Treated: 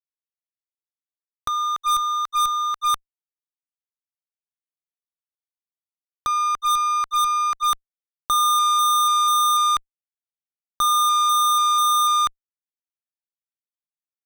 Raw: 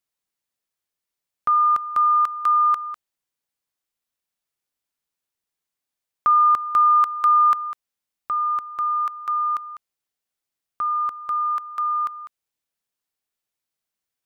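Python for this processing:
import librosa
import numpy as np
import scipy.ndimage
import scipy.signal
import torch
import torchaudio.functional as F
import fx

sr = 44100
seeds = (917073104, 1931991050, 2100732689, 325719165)

y = fx.gate_flip(x, sr, shuts_db=-19.0, range_db=-34)
y = fx.fuzz(y, sr, gain_db=49.0, gate_db=-57.0)
y = y * 10.0 ** (-4.5 / 20.0)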